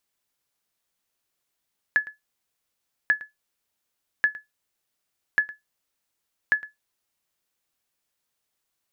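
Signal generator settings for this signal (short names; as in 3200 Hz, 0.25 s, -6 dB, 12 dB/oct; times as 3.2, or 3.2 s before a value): sonar ping 1710 Hz, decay 0.16 s, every 1.14 s, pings 5, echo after 0.11 s, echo -19 dB -11 dBFS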